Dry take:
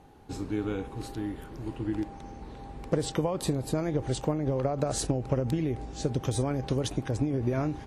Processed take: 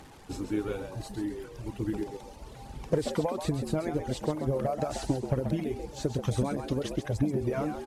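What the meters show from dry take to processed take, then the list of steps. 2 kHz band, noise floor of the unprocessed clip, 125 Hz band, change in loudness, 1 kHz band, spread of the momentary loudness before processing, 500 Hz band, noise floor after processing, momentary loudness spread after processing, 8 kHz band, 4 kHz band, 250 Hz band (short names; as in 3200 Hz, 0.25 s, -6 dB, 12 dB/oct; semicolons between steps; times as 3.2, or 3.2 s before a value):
-0.5 dB, -45 dBFS, -2.0 dB, -1.0 dB, 0.0 dB, 11 LU, -0.5 dB, -48 dBFS, 10 LU, -6.0 dB, -3.0 dB, -1.0 dB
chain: delta modulation 64 kbps, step -45 dBFS; reverb removal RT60 1.9 s; phaser 1.1 Hz, delay 4.3 ms, feedback 29%; on a send: frequency-shifting echo 0.133 s, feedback 36%, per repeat +83 Hz, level -8 dB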